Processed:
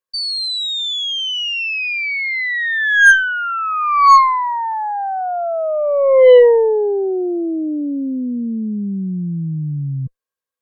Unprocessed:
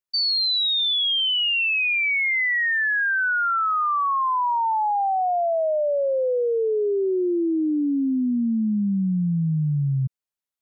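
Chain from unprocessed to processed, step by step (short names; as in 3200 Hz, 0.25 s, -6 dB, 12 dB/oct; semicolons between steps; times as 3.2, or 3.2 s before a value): small resonant body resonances 500/1100/1600 Hz, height 17 dB, ringing for 55 ms; added harmonics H 6 -22 dB, 8 -39 dB, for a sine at -1.5 dBFS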